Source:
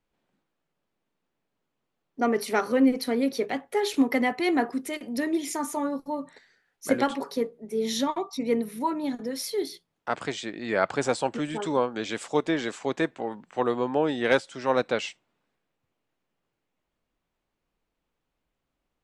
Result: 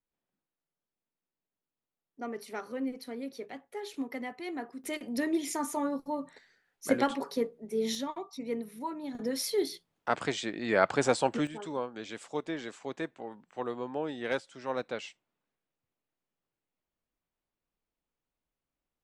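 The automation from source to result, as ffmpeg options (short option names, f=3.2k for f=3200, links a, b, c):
-af "asetnsamples=n=441:p=0,asendcmd='4.84 volume volume -3dB;7.95 volume volume -9.5dB;9.15 volume volume -0.5dB;11.47 volume volume -10dB',volume=-14dB"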